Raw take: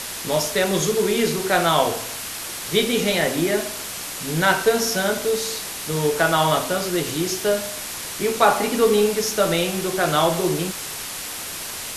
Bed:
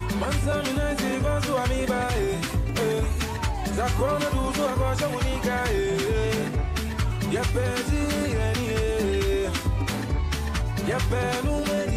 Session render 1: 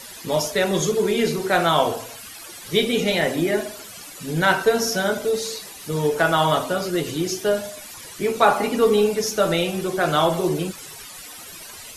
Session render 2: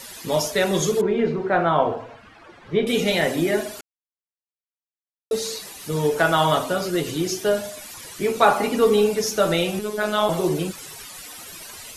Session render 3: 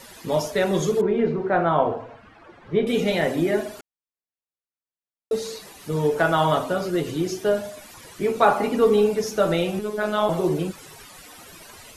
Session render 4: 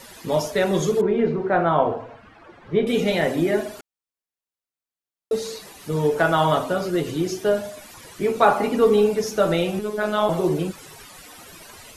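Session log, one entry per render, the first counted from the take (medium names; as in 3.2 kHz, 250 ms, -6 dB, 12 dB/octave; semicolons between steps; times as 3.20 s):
noise reduction 14 dB, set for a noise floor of -32 dBFS
1.01–2.87 s: low-pass 1.6 kHz; 3.81–5.31 s: mute; 9.79–10.29 s: robot voice 211 Hz
treble shelf 2.3 kHz -8.5 dB
trim +1 dB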